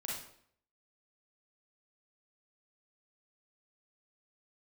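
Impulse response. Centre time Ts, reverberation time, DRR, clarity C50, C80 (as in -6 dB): 53 ms, 0.65 s, -4.5 dB, 0.0 dB, 6.0 dB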